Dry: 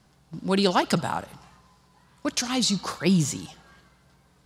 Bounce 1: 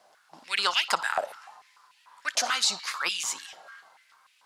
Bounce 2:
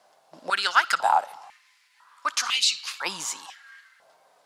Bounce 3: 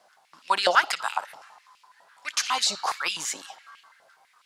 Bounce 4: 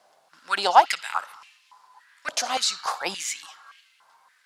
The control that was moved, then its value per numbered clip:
high-pass on a step sequencer, speed: 6.8, 2, 12, 3.5 Hertz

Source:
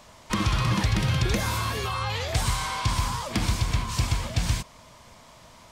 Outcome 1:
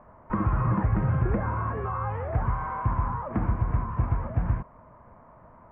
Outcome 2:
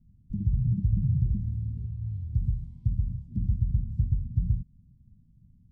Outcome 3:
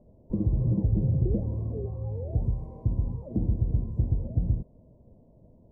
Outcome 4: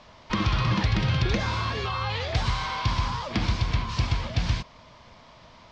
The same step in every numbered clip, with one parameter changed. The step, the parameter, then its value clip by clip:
inverse Chebyshev low-pass filter, stop band from: 3,700, 500, 1,300, 11,000 Hertz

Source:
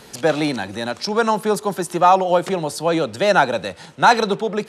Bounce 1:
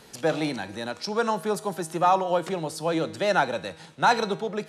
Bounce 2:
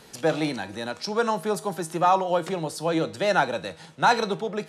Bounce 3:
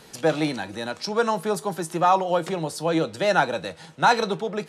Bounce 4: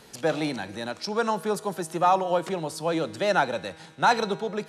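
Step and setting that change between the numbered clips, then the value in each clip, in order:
tuned comb filter, decay: 0.85, 0.38, 0.16, 1.8 seconds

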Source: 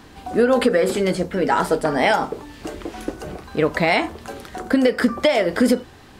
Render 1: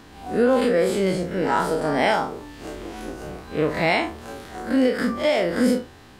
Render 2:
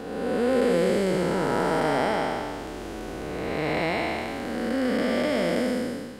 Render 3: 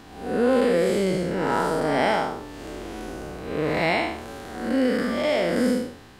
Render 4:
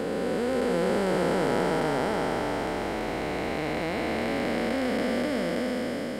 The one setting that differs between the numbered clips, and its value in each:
spectrum smeared in time, width: 86, 568, 215, 1,590 milliseconds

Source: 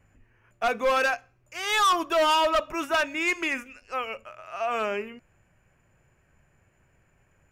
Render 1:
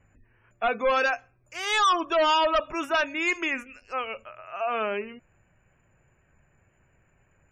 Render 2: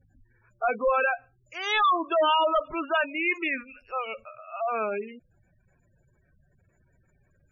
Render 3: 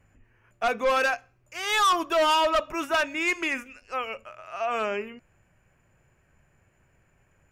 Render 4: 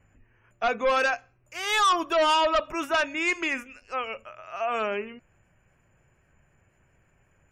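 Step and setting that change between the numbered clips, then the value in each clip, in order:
gate on every frequency bin, under each frame's peak: −30, −15, −55, −40 decibels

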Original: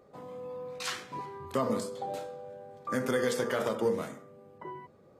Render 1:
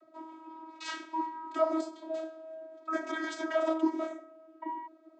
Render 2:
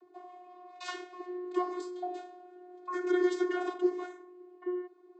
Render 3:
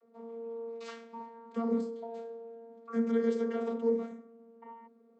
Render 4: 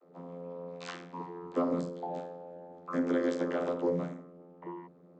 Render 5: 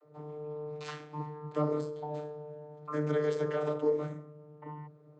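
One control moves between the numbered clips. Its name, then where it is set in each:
channel vocoder, frequency: 320, 360, 230, 87, 150 Hertz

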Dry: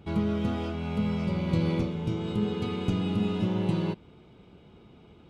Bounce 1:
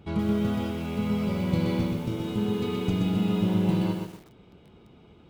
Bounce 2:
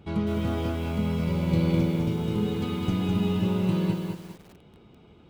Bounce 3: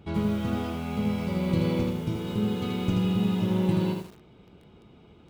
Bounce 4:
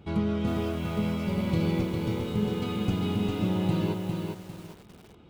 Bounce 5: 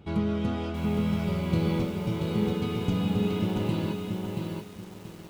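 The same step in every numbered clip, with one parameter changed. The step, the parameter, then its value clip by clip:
feedback echo at a low word length, delay time: 125, 206, 81, 403, 681 milliseconds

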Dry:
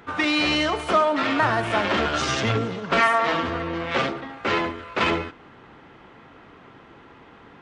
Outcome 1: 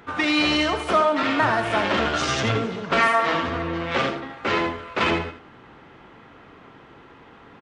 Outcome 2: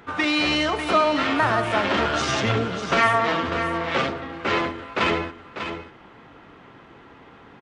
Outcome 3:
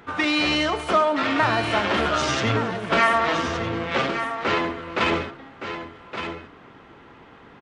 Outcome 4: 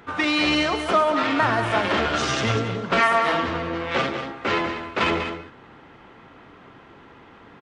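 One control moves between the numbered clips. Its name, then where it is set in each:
single-tap delay, delay time: 83, 595, 1,167, 193 milliseconds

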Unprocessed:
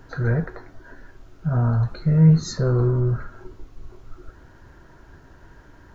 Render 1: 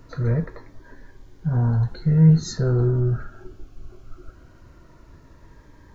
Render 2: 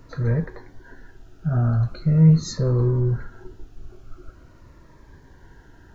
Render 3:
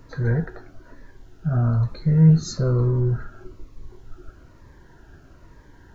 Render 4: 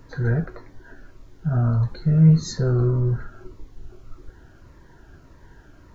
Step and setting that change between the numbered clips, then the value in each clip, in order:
phaser whose notches keep moving one way, speed: 0.2, 0.43, 1.1, 1.7 Hertz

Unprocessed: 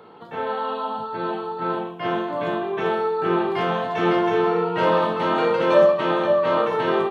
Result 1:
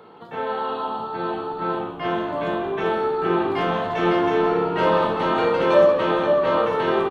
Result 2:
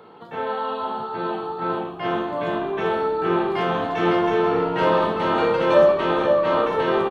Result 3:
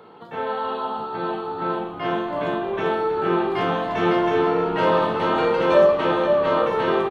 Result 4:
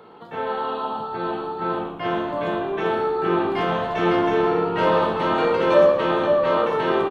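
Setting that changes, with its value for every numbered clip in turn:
echo with shifted repeats, delay time: 175, 486, 317, 115 milliseconds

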